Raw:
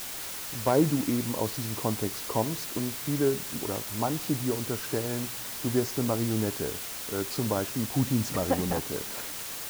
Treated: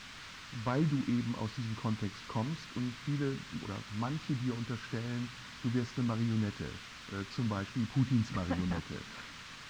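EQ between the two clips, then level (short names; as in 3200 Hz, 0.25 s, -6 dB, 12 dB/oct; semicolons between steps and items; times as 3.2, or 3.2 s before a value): air absorption 160 m; band shelf 520 Hz -11 dB; high shelf 10000 Hz -7 dB; -2.0 dB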